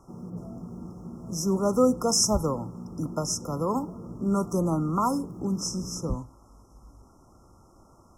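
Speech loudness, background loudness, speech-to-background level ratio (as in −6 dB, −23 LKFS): −27.0 LKFS, −41.0 LKFS, 14.0 dB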